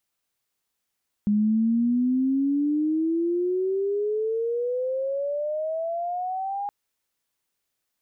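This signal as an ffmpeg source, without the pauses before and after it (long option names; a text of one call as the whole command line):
ffmpeg -f lavfi -i "aevalsrc='pow(10,(-18-8.5*t/5.42)/20)*sin(2*PI*205*5.42/(24*log(2)/12)*(exp(24*log(2)/12*t/5.42)-1))':duration=5.42:sample_rate=44100" out.wav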